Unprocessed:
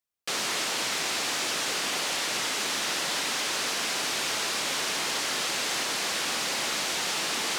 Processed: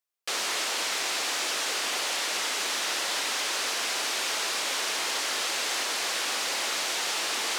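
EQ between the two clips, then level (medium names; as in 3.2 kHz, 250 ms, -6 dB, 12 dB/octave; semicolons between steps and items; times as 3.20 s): high-pass 360 Hz 12 dB/octave; 0.0 dB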